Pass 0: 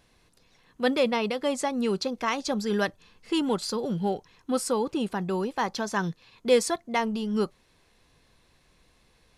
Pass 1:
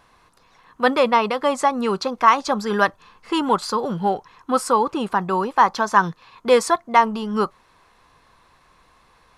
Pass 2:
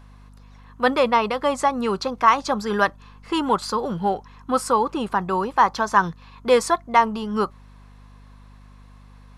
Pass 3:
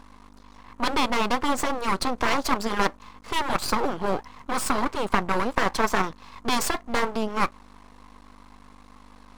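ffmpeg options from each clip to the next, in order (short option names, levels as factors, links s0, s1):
-af "equalizer=f=1100:t=o:w=1.2:g=15,volume=1.26"
-af "aeval=exprs='val(0)+0.00631*(sin(2*PI*50*n/s)+sin(2*PI*2*50*n/s)/2+sin(2*PI*3*50*n/s)/3+sin(2*PI*4*50*n/s)/4+sin(2*PI*5*50*n/s)/5)':c=same,volume=0.841"
-af "afftfilt=real='re*lt(hypot(re,im),0.501)':imag='im*lt(hypot(re,im),0.501)':win_size=1024:overlap=0.75,equalizer=f=125:t=o:w=1:g=-11,equalizer=f=250:t=o:w=1:g=9,equalizer=f=500:t=o:w=1:g=4,equalizer=f=1000:t=o:w=1:g=9,equalizer=f=4000:t=o:w=1:g=4,equalizer=f=8000:t=o:w=1:g=7,aeval=exprs='max(val(0),0)':c=same"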